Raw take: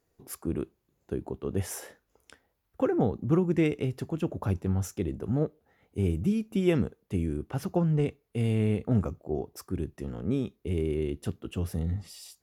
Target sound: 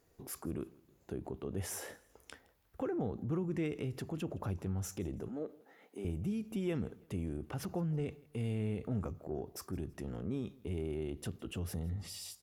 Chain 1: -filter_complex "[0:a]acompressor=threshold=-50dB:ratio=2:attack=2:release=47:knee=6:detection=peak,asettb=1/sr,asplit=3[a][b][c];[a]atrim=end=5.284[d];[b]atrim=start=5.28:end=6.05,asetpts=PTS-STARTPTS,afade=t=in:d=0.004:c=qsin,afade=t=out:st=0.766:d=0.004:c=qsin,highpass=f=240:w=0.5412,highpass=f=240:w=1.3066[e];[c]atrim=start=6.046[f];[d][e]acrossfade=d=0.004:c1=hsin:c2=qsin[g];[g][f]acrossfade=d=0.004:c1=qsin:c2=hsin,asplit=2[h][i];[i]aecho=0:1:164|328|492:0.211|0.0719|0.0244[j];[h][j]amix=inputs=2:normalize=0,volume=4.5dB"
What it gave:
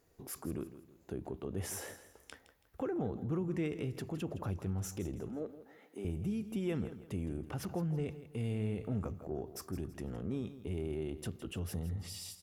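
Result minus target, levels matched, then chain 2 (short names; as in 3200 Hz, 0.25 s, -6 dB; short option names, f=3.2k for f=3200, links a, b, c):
echo-to-direct +9.5 dB
-filter_complex "[0:a]acompressor=threshold=-50dB:ratio=2:attack=2:release=47:knee=6:detection=peak,asettb=1/sr,asplit=3[a][b][c];[a]atrim=end=5.284[d];[b]atrim=start=5.28:end=6.05,asetpts=PTS-STARTPTS,afade=t=in:d=0.004:c=qsin,afade=t=out:st=0.766:d=0.004:c=qsin,highpass=f=240:w=0.5412,highpass=f=240:w=1.3066[e];[c]atrim=start=6.046[f];[d][e]acrossfade=d=0.004:c1=hsin:c2=qsin[g];[g][f]acrossfade=d=0.004:c1=qsin:c2=hsin,asplit=2[h][i];[i]aecho=0:1:164|328:0.0708|0.0241[j];[h][j]amix=inputs=2:normalize=0,volume=4.5dB"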